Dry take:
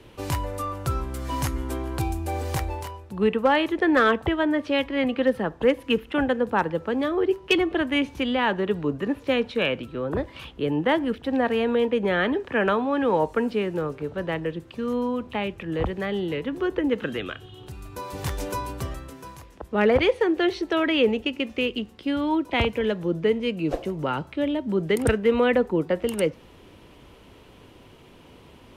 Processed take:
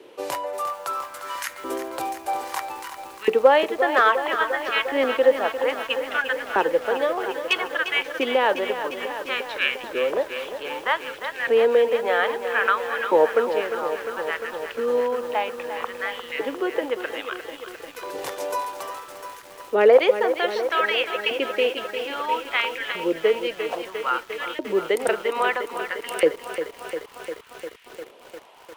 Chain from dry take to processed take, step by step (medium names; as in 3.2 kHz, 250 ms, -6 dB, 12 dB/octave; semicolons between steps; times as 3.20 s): LFO high-pass saw up 0.61 Hz 390–2000 Hz; bit-crushed delay 351 ms, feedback 80%, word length 7-bit, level -9.5 dB